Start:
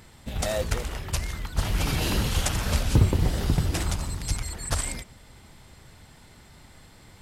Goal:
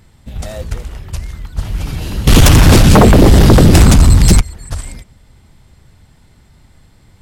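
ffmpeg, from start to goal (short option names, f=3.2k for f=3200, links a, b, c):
-filter_complex "[0:a]lowshelf=f=230:g=9.5,asettb=1/sr,asplit=3[a][b][c];[a]atrim=end=2.274[d];[b]atrim=start=2.27:end=4.41,asetpts=PTS-STARTPTS,afade=t=in:d=0.004:c=qsin,afade=t=out:st=2.136:d=0.004:c=qsin,aeval=exprs='1.06*sin(PI/2*7.94*val(0)/1.06)':c=same[e];[c]atrim=start=4.406[f];[d][e]acrossfade=d=0.004:c1=hsin:c2=qsin[g];[g][f]acrossfade=d=0.004:c1=qsin:c2=hsin,volume=-2dB"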